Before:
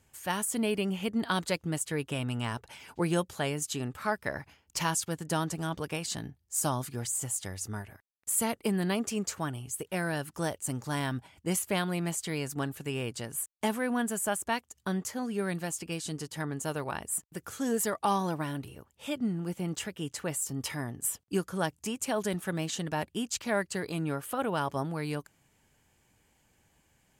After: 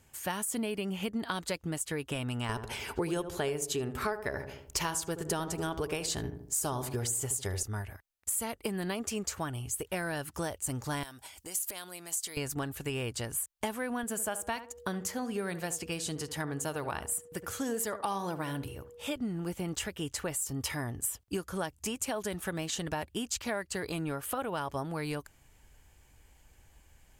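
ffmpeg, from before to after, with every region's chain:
-filter_complex "[0:a]asettb=1/sr,asplit=3[a][b][c];[a]atrim=end=2.494[d];[b]atrim=start=2.49:end=7.63,asetpts=PTS-STARTPTS,afade=t=in:d=0.004:c=qsin,afade=t=out:st=5.136:d=0.004:c=qsin,equalizer=f=410:t=o:w=0.24:g=11.5,acontrast=52,asplit=2[e][f];[f]adelay=77,lowpass=f=1k:p=1,volume=-10dB,asplit=2[g][h];[h]adelay=77,lowpass=f=1k:p=1,volume=0.46,asplit=2[i][j];[j]adelay=77,lowpass=f=1k:p=1,volume=0.46,asplit=2[k][l];[l]adelay=77,lowpass=f=1k:p=1,volume=0.46,asplit=2[m][n];[n]adelay=77,lowpass=f=1k:p=1,volume=0.46[o];[e][g][i][k][m][o]amix=inputs=6:normalize=0,atrim=end_sample=226674[p];[c]atrim=start=7.626[q];[d][p]acrossfade=d=0.004:c1=hsin:c2=qsin[r];[r][q]acrossfade=d=0.004:c1=qsin:c2=hsin,asettb=1/sr,asplit=3[s][t][u];[s]atrim=end=11.034[v];[t]atrim=start=11.03:end=12.37,asetpts=PTS-STARTPTS,afade=t=in:d=0.004:c=qsin,afade=t=out:st=1.336:d=0.004:c=qsin,acompressor=threshold=-40dB:ratio=12:attack=3.2:release=140:knee=1:detection=peak,bass=f=250:g=-12,treble=f=4k:g=14,asoftclip=type=hard:threshold=-22.5dB[w];[u]atrim=start=12.366[x];[v][w]acrossfade=d=0.004:c1=hsin:c2=qsin[y];[y][x]acrossfade=d=0.004:c1=qsin:c2=hsin,asettb=1/sr,asplit=3[z][aa][ab];[z]atrim=end=14.034[ac];[aa]atrim=start=14.03:end=19.16,asetpts=PTS-STARTPTS,afade=t=in:d=0.004:c=qsin,afade=t=out:st=5.126:d=0.004:c=qsin,highpass=68,aeval=exprs='val(0)+0.00224*sin(2*PI*480*n/s)':c=same,asplit=2[ad][ae];[ae]adelay=71,lowpass=f=1.3k:p=1,volume=-12dB,asplit=2[af][ag];[ag]adelay=71,lowpass=f=1.3k:p=1,volume=0.2,asplit=2[ah][ai];[ai]adelay=71,lowpass=f=1.3k:p=1,volume=0.2[aj];[ad][af][ah][aj]amix=inputs=4:normalize=0,atrim=end_sample=226233[ak];[ab]atrim=start=19.156[al];[ac][ak]acrossfade=d=0.004:c1=hsin:c2=qsin[am];[am][al]acrossfade=d=0.004:c1=qsin:c2=hsin,asubboost=boost=7.5:cutoff=58,acompressor=threshold=-34dB:ratio=6,equalizer=f=14k:w=1.6:g=2.5,volume=3.5dB"

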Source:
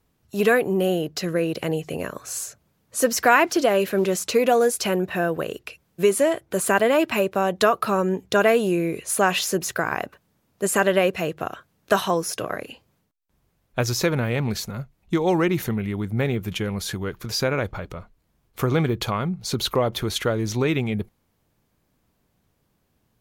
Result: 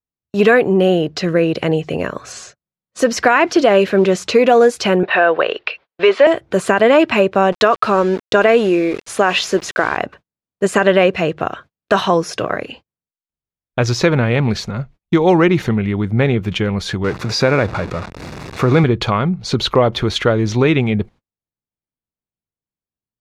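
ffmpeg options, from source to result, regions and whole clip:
-filter_complex "[0:a]asettb=1/sr,asplit=3[a][b][c];[a]atrim=end=2.324[d];[b]atrim=start=2.32:end=2.99,asetpts=PTS-STARTPTS,afade=t=in:d=0.004:c=qsin,afade=t=out:st=0.666:d=0.004:c=qsin,lowpass=6.8k,aecho=1:1:5.5:0.32,atrim=end_sample=29547[e];[c]atrim=start=2.986[f];[d][e]acrossfade=d=0.004:c1=hsin:c2=qsin[g];[g][f]acrossfade=d=0.004:c1=qsin:c2=hsin,asettb=1/sr,asplit=3[h][i][j];[h]atrim=end=5.034[k];[i]atrim=start=5.03:end=6.27,asetpts=PTS-STARTPTS,afade=t=in:d=0.004:c=qsin,afade=t=out:st=1.236:d=0.004:c=qsin,lowpass=f=4.5k:t=q:w=2,acrossover=split=440 3400:gain=0.0631 1 0.141[l][m][n];[l][m][n]amix=inputs=3:normalize=0,acontrast=70[o];[j]atrim=start=6.266[p];[k][o]acrossfade=d=0.004:c1=hsin:c2=qsin[q];[q][p]acrossfade=d=0.004:c1=qsin:c2=hsin,asettb=1/sr,asplit=3[r][s][t];[r]atrim=end=7.524[u];[s]atrim=start=7.52:end=9.97,asetpts=PTS-STARTPTS,afade=t=in:d=0.004:c=qsin,afade=t=out:st=2.446:d=0.004:c=qsin,equalizer=f=160:w=3.9:g=-12.5,aeval=exprs='val(0)*gte(abs(val(0)),0.0188)':c=same[v];[t]atrim=start=9.966[w];[u][v]acrossfade=d=0.004:c1=hsin:c2=qsin[x];[x][w]acrossfade=d=0.004:c1=qsin:c2=hsin,asettb=1/sr,asplit=3[y][z][aa];[y]atrim=end=17.044[ab];[z]atrim=start=17.04:end=18.84,asetpts=PTS-STARTPTS,afade=t=in:d=0.004:c=qsin,afade=t=out:st=1.796:d=0.004:c=qsin,aeval=exprs='val(0)+0.5*0.0316*sgn(val(0))':c=same,highpass=89,bandreject=f=3.1k:w=6.1[ac];[aa]atrim=start=18.836[ad];[ab][ac]acrossfade=d=0.004:c1=hsin:c2=qsin[ae];[ae][ad]acrossfade=d=0.004:c1=qsin:c2=hsin,lowpass=4.4k,agate=range=-36dB:threshold=-46dB:ratio=16:detection=peak,alimiter=level_in=9.5dB:limit=-1dB:release=50:level=0:latency=1,volume=-1dB"

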